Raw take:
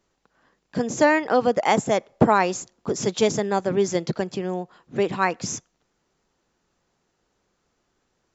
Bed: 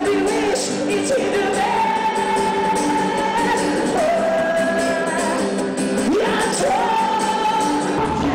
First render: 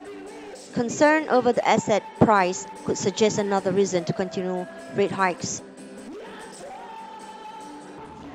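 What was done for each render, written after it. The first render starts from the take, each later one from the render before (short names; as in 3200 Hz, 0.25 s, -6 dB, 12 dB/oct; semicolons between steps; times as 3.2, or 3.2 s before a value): add bed -21 dB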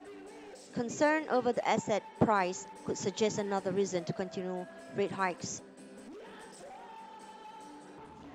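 gain -10 dB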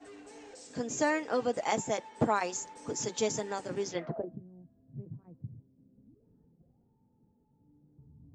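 notch comb 190 Hz; low-pass sweep 7300 Hz -> 130 Hz, 3.83–4.42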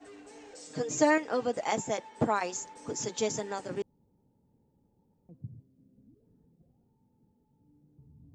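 0.54–1.18 comb 6.5 ms, depth 97%; 3.82–5.29 room tone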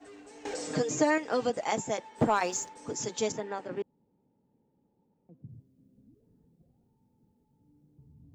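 0.45–1.5 three-band squash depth 70%; 2.18–2.69 sample leveller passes 1; 3.32–5.49 three-band isolator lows -12 dB, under 150 Hz, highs -17 dB, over 3500 Hz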